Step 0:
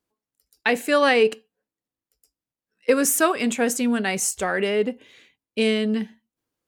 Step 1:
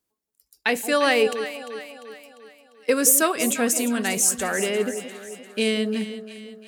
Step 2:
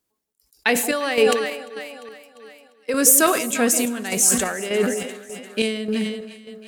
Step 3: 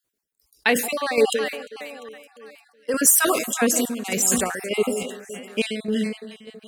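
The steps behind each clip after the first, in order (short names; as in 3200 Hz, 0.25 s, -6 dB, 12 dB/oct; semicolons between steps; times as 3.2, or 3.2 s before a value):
high shelf 4800 Hz +9.5 dB; on a send: echo with dull and thin repeats by turns 0.174 s, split 800 Hz, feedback 70%, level -9 dB; on the sum: gain -2.5 dB
chopper 1.7 Hz, depth 60%, duty 55%; on a send at -19 dB: reverb RT60 1.9 s, pre-delay 18 ms; on the sum: sustainer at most 63 dB/s; gain +3 dB
random spectral dropouts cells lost 30%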